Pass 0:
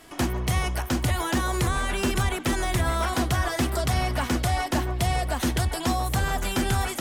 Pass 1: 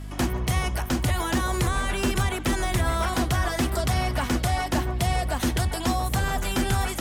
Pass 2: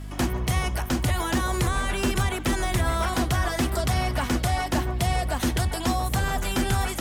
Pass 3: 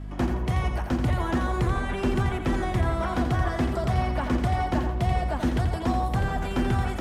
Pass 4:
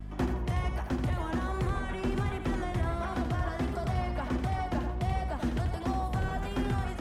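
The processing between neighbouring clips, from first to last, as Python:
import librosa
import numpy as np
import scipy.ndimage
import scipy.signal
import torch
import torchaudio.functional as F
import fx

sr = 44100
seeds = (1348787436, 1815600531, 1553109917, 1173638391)

y1 = fx.add_hum(x, sr, base_hz=50, snr_db=11)
y2 = fx.quant_dither(y1, sr, seeds[0], bits=12, dither='triangular')
y3 = fx.lowpass(y2, sr, hz=1200.0, slope=6)
y3 = fx.echo_feedback(y3, sr, ms=85, feedback_pct=31, wet_db=-7.0)
y4 = fx.rider(y3, sr, range_db=10, speed_s=0.5)
y4 = fx.vibrato(y4, sr, rate_hz=1.4, depth_cents=57.0)
y4 = F.gain(torch.from_numpy(y4), -6.0).numpy()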